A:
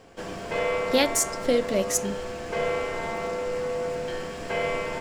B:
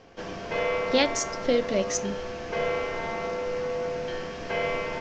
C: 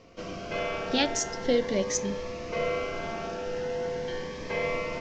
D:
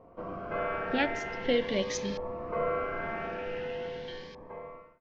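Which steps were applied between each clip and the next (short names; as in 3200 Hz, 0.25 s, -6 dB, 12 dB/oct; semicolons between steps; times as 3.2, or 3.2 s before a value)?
elliptic low-pass 6300 Hz, stop band 50 dB
cascading phaser rising 0.41 Hz
ending faded out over 1.63 s; LFO low-pass saw up 0.46 Hz 880–4500 Hz; gain -3 dB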